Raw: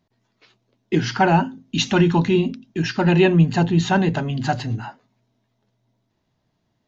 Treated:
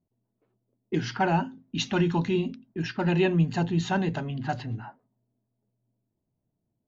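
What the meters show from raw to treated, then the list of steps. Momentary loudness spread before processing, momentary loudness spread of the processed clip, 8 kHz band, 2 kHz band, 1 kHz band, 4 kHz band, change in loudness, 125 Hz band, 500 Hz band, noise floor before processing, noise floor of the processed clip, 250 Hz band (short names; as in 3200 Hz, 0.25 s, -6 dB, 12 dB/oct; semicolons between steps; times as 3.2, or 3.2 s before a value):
10 LU, 10 LU, n/a, -8.0 dB, -8.0 dB, -8.5 dB, -8.0 dB, -8.0 dB, -8.0 dB, -72 dBFS, -81 dBFS, -8.0 dB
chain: low-pass opened by the level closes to 530 Hz, open at -15 dBFS; gain -8 dB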